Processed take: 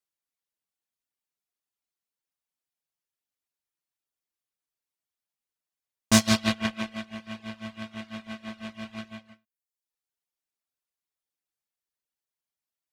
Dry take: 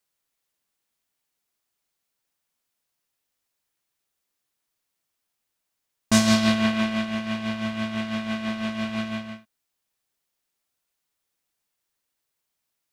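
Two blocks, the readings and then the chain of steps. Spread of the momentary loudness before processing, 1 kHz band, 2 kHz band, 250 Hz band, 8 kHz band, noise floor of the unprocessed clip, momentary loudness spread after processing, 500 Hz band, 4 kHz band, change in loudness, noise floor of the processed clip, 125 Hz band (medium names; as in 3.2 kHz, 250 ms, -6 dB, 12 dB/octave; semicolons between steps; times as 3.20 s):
12 LU, -5.0 dB, -4.5 dB, -6.0 dB, +0.5 dB, -81 dBFS, 18 LU, -6.0 dB, -2.5 dB, -2.5 dB, under -85 dBFS, -3.0 dB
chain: reverb removal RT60 0.72 s; Chebyshev shaper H 7 -20 dB, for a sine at -6.5 dBFS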